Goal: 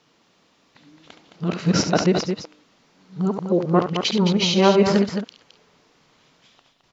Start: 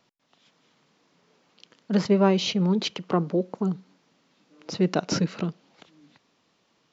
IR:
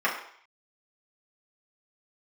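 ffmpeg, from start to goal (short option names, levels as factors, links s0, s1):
-af "areverse,aecho=1:1:69.97|215.7:0.355|0.447,asubboost=boost=6:cutoff=78,volume=2"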